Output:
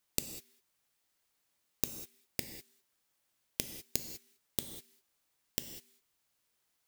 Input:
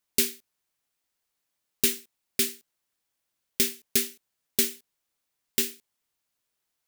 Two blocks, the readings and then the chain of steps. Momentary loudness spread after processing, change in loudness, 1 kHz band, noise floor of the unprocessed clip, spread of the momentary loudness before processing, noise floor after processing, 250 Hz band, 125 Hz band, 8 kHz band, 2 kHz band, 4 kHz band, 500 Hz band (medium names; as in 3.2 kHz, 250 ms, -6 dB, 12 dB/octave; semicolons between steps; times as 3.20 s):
12 LU, -13.0 dB, -3.5 dB, -82 dBFS, 7 LU, -79 dBFS, -12.0 dB, -1.0 dB, -12.0 dB, -14.5 dB, -12.5 dB, -13.0 dB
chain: inverted gate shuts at -18 dBFS, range -31 dB; gated-style reverb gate 220 ms flat, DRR 7 dB; trim +1.5 dB